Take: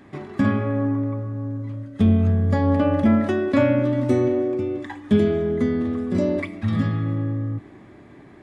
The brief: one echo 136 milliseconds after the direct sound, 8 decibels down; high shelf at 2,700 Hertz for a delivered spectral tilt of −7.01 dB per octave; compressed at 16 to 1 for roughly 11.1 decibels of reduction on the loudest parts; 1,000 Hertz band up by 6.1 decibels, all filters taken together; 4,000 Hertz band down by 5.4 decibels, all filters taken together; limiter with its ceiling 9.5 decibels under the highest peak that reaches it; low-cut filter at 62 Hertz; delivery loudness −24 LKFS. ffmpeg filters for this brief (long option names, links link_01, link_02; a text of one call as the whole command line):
ffmpeg -i in.wav -af "highpass=62,equalizer=frequency=1000:width_type=o:gain=8.5,highshelf=frequency=2700:gain=-4,equalizer=frequency=4000:width_type=o:gain=-4.5,acompressor=threshold=-23dB:ratio=16,alimiter=limit=-21.5dB:level=0:latency=1,aecho=1:1:136:0.398,volume=5dB" out.wav